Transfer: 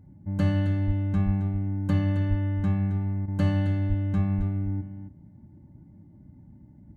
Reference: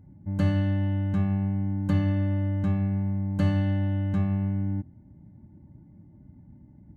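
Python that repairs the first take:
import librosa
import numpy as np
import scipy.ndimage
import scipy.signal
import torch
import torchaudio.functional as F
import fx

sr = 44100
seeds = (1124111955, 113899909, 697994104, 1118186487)

y = fx.fix_deplosive(x, sr, at_s=(0.86, 1.25, 2.29, 3.88, 4.37))
y = fx.fix_interpolate(y, sr, at_s=(3.26,), length_ms=19.0)
y = fx.fix_echo_inverse(y, sr, delay_ms=268, level_db=-11.0)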